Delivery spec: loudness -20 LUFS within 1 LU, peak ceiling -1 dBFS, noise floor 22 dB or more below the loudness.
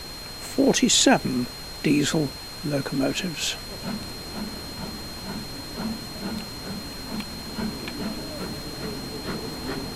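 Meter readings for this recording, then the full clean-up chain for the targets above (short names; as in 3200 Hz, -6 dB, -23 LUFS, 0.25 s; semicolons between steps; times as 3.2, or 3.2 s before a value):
steady tone 4200 Hz; tone level -38 dBFS; noise floor -37 dBFS; noise floor target -49 dBFS; loudness -26.5 LUFS; peak -4.5 dBFS; loudness target -20.0 LUFS
-> notch 4200 Hz, Q 30; noise print and reduce 12 dB; gain +6.5 dB; limiter -1 dBFS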